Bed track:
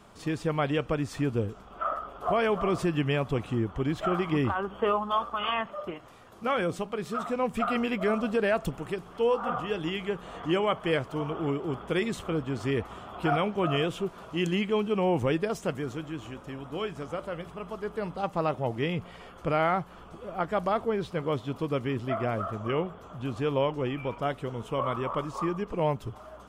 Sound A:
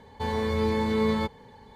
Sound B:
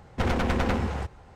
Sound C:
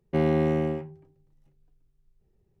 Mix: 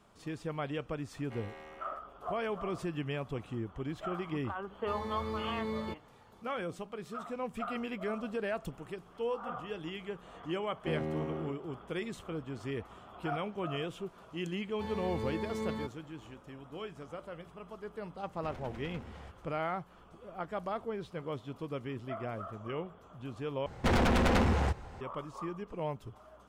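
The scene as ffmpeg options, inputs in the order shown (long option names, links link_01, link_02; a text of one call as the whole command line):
ffmpeg -i bed.wav -i cue0.wav -i cue1.wav -i cue2.wav -filter_complex "[3:a]asplit=2[link_01][link_02];[1:a]asplit=2[link_03][link_04];[2:a]asplit=2[link_05][link_06];[0:a]volume=-9.5dB[link_07];[link_01]highpass=1000[link_08];[link_05]acompressor=threshold=-36dB:ratio=6:attack=3.2:release=140:knee=1:detection=peak[link_09];[link_06]aeval=exprs='0.141*sin(PI/2*1.78*val(0)/0.141)':channel_layout=same[link_10];[link_07]asplit=2[link_11][link_12];[link_11]atrim=end=23.664[link_13];[link_10]atrim=end=1.35,asetpts=PTS-STARTPTS,volume=-6dB[link_14];[link_12]atrim=start=25.006[link_15];[link_08]atrim=end=2.6,asetpts=PTS-STARTPTS,volume=-12.5dB,afade=type=in:duration=0.004:curve=hsin,afade=type=out:start_time=2.596:duration=0.004:curve=hsin,adelay=1170[link_16];[link_03]atrim=end=1.75,asetpts=PTS-STARTPTS,volume=-12.5dB,afade=type=in:duration=0.004:curve=hsin,afade=type=out:start_time=1.746:duration=0.004:curve=hsin,adelay=4670[link_17];[link_02]atrim=end=2.6,asetpts=PTS-STARTPTS,volume=-13dB,afade=type=in:duration=0.004:curve=hsin,afade=type=out:start_time=2.596:duration=0.004:curve=hsin,adelay=10720[link_18];[link_04]atrim=end=1.75,asetpts=PTS-STARTPTS,volume=-12.5dB,afade=type=in:duration=0.004:curve=hsin,afade=type=out:start_time=1.746:duration=0.004:curve=hsin,adelay=643860S[link_19];[link_09]atrim=end=1.35,asetpts=PTS-STARTPTS,volume=-9.5dB,afade=type=in:duration=0.004:curve=hsin,afade=type=out:start_time=1.346:duration=0.004:curve=hsin,adelay=18250[link_20];[link_13][link_14]acrossfade=duration=0.004:curve1=hsin:curve2=hsin[link_21];[link_21][link_15]acrossfade=duration=0.004:curve1=hsin:curve2=hsin[link_22];[link_22][link_16][link_17][link_18][link_19][link_20]amix=inputs=6:normalize=0" out.wav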